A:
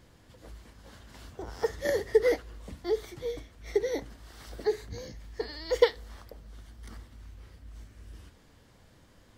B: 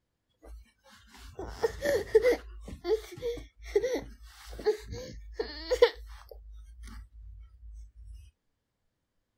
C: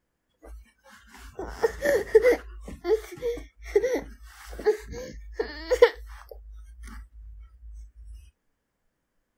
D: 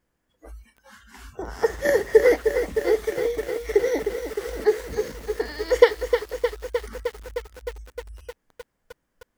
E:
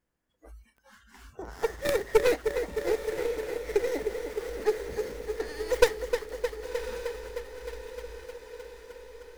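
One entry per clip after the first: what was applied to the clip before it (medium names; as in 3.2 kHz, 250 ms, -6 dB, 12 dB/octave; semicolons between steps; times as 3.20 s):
spectral noise reduction 23 dB
fifteen-band graphic EQ 100 Hz -11 dB, 1.6 kHz +3 dB, 4 kHz -8 dB; trim +5 dB
bit-crushed delay 308 ms, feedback 80%, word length 7-bit, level -7.5 dB; trim +2.5 dB
tracing distortion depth 0.44 ms; on a send: echo that smears into a reverb 1095 ms, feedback 58%, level -11.5 dB; on the sum: trim -7 dB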